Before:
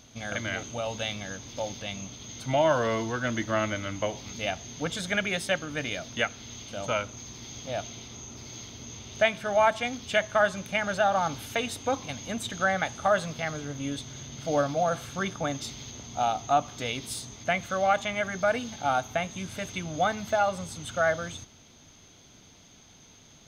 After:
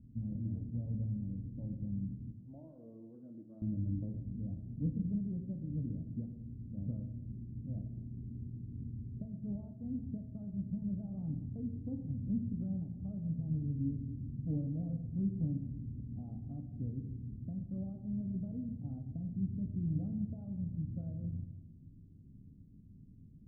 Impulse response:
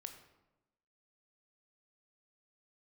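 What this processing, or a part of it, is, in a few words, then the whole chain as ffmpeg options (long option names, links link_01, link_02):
club heard from the street: -filter_complex "[0:a]asettb=1/sr,asplit=3[link_01][link_02][link_03];[link_01]atrim=end=2.324[link_04];[link_02]atrim=start=2.32:end=3.62,asetpts=PTS-STARTPTS,afade=type=in:duration=0.004:curve=qsin,afade=type=out:start_time=1.296:duration=0.004:curve=qsin,highpass=600[link_05];[link_03]atrim=start=3.616[link_06];[link_04][link_05]acrossfade=duration=0.004:curve1=hsin:curve2=qsin[link_07];[link_07][link_06]acrossfade=duration=0.004:curve1=qsin:curve2=hsin,alimiter=limit=-19dB:level=0:latency=1:release=254,lowpass=frequency=230:width=0.5412,lowpass=frequency=230:width=1.3066[link_08];[1:a]atrim=start_sample=2205[link_09];[link_08][link_09]afir=irnorm=-1:irlink=0,volume=8.5dB"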